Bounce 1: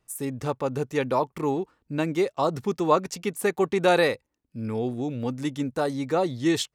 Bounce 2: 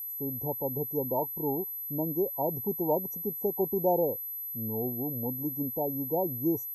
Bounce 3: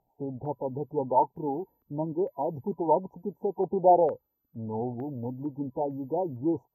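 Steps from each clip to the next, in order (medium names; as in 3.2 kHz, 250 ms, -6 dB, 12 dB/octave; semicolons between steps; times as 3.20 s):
distance through air 180 m; FFT band-reject 980–5600 Hz; whistle 12 kHz -30 dBFS; trim -5 dB
coarse spectral quantiser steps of 15 dB; step-sequenced low-pass 2.2 Hz 780–1900 Hz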